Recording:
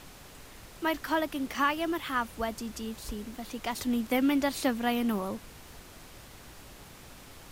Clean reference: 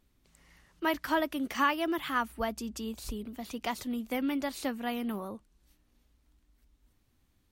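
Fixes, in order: noise print and reduce 20 dB; trim 0 dB, from 3.75 s -5.5 dB

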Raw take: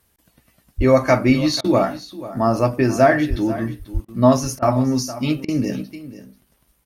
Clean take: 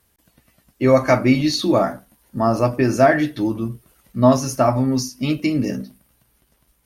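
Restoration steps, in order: de-plosive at 0.77/3.29/3.93 s; interpolate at 4.09/6.25 s, 2.2 ms; interpolate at 1.61/4.05/4.59/5.45 s, 32 ms; inverse comb 489 ms -15.5 dB

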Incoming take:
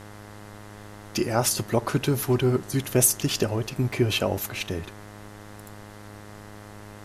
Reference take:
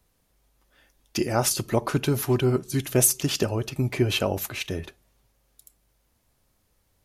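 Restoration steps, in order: de-hum 103.9 Hz, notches 20; noise reduction 25 dB, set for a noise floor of -44 dBFS

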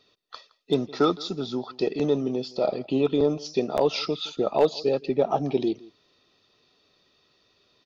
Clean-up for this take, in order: clip repair -11 dBFS; interpolate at 3.77 s, 8 ms; inverse comb 166 ms -22 dB

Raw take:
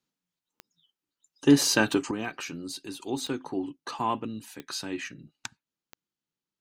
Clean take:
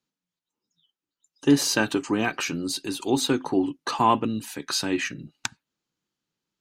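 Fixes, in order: de-click; trim 0 dB, from 2.11 s +8.5 dB

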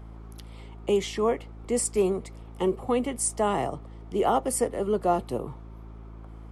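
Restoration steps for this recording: de-hum 54.9 Hz, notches 6

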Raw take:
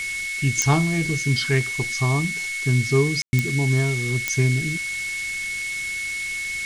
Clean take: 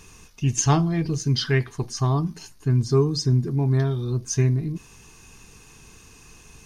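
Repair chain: de-click; band-stop 2.2 kHz, Q 30; room tone fill 3.22–3.33 s; noise print and reduce 21 dB

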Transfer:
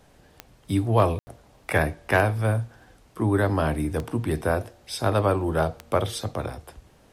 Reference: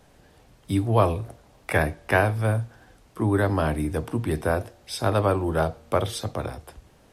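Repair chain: clip repair -9 dBFS; de-click; room tone fill 1.19–1.27 s

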